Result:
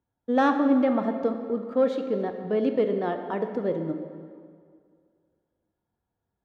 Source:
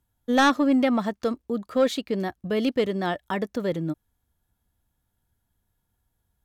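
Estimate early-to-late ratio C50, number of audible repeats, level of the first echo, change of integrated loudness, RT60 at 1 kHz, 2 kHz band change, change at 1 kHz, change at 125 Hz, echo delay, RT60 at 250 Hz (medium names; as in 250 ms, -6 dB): 7.0 dB, no echo, no echo, -1.0 dB, 2.2 s, -6.5 dB, -1.5 dB, -4.0 dB, no echo, 2.1 s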